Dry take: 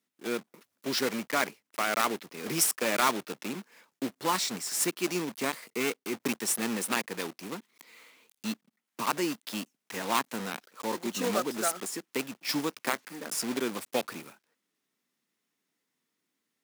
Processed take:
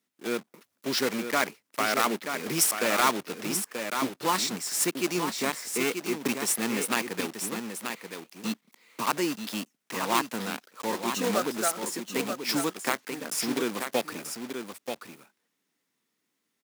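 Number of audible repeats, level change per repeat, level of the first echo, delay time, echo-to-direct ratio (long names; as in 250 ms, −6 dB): 1, repeats not evenly spaced, −7.0 dB, 933 ms, −7.0 dB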